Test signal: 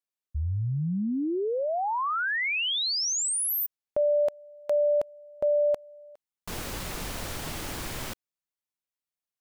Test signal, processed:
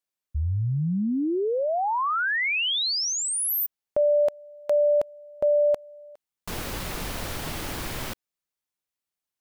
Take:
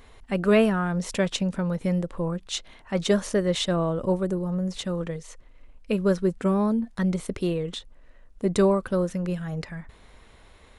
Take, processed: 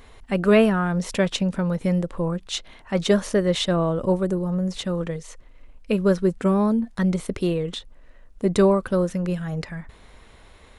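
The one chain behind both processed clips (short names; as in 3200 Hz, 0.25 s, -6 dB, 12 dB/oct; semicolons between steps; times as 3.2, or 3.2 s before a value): dynamic EQ 7400 Hz, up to -3 dB, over -45 dBFS, Q 1.2; gain +3 dB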